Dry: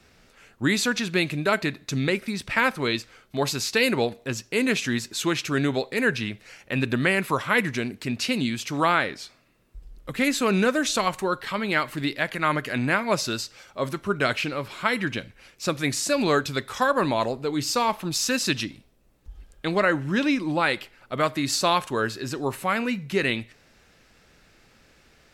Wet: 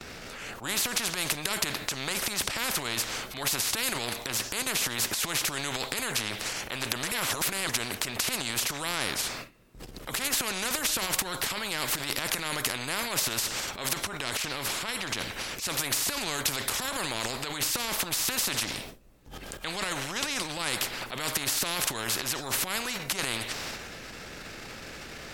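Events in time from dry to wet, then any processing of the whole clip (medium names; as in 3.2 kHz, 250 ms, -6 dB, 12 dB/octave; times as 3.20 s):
7.03–7.69 s: reverse
13.87–15.13 s: compression, threshold -26 dBFS
whole clip: gate with hold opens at -49 dBFS; transient shaper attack -9 dB, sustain +10 dB; spectrum-flattening compressor 4:1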